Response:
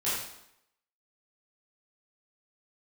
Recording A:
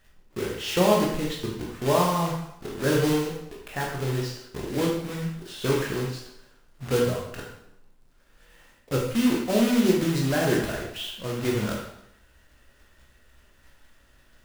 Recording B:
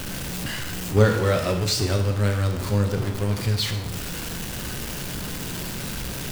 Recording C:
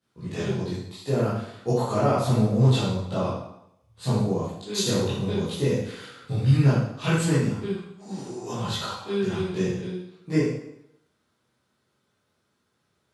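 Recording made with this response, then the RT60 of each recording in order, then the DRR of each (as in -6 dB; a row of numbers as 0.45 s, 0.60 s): C; 0.80 s, 0.80 s, 0.80 s; -2.5 dB, 4.5 dB, -12.0 dB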